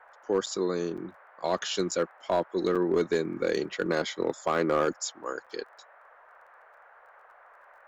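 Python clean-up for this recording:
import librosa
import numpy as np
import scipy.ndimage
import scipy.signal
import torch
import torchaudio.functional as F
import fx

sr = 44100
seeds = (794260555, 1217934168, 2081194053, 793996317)

y = fx.fix_declip(x, sr, threshold_db=-17.0)
y = fx.fix_declick_ar(y, sr, threshold=6.5)
y = fx.fix_interpolate(y, sr, at_s=(0.46, 0.97, 1.91, 2.75, 5.46), length_ms=6.2)
y = fx.noise_reduce(y, sr, print_start_s=6.44, print_end_s=6.94, reduce_db=19.0)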